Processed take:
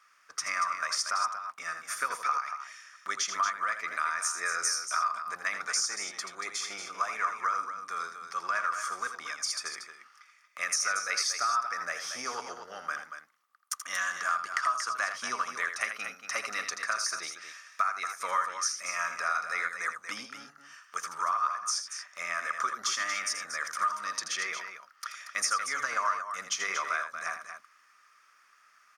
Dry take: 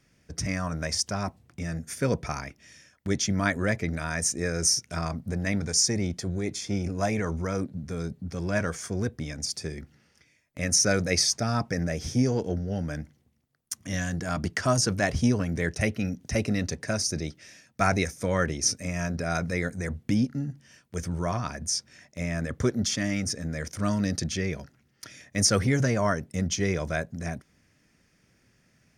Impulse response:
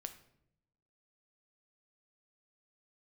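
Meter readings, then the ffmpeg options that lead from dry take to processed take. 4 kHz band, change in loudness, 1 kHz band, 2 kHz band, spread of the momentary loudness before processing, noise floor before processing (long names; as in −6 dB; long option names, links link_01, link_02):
−3.5 dB, −3.5 dB, +5.0 dB, +1.5 dB, 12 LU, −66 dBFS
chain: -af "highpass=frequency=1200:width_type=q:width=13,acompressor=threshold=-27dB:ratio=6,aecho=1:1:81.63|233.2:0.355|0.355"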